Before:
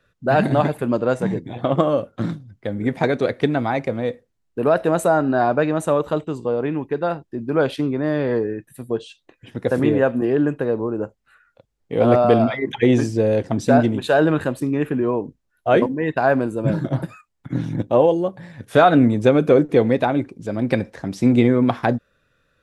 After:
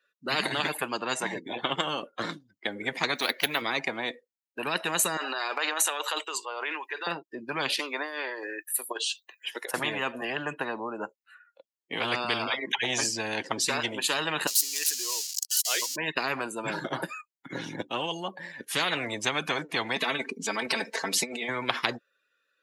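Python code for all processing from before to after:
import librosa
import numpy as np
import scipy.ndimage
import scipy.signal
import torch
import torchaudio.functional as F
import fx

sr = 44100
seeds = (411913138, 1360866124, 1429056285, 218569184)

y = fx.chain(x, sr, fx.tilt_eq(slope=2.0),
    fx.resample_linear(factor=3), at=(3.15, 3.62))
y = fx.chain(y, sr, fx.highpass(hz=1100.0, slope=12),
    fx.transient(attack_db=-2, sustain_db=8), at=(5.17, 7.07))
y = fx.chain(y, sr, fx.highpass(hz=680.0, slope=12),
    fx.high_shelf(hz=9000.0, db=10.0),
    fx.over_compress(threshold_db=-31.0, ratio=-0.5), at=(7.79, 9.74))
y = fx.chain(y, sr, fx.crossing_spikes(level_db=-19.0),
    fx.bandpass_q(hz=5600.0, q=1.2), at=(14.47, 15.96))
y = fx.chain(y, sr, fx.over_compress(threshold_db=-19.0, ratio=-0.5),
    fx.comb(ms=4.5, depth=0.91), at=(19.96, 21.49))
y = fx.bin_expand(y, sr, power=1.5)
y = scipy.signal.sosfilt(scipy.signal.butter(4, 320.0, 'highpass', fs=sr, output='sos'), y)
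y = fx.spectral_comp(y, sr, ratio=10.0)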